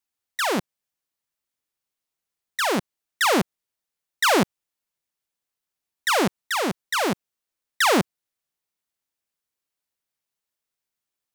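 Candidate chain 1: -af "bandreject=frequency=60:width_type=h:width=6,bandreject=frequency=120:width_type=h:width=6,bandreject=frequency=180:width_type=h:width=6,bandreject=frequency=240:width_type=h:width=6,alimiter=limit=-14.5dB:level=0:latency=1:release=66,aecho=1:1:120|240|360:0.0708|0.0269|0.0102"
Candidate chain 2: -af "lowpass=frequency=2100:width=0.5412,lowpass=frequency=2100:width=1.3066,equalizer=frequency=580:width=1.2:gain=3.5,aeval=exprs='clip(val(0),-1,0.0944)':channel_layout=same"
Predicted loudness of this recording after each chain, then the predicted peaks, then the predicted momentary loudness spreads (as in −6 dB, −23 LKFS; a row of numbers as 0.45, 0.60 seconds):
−24.5, −24.5 LKFS; −14.0, −9.0 dBFS; 12, 11 LU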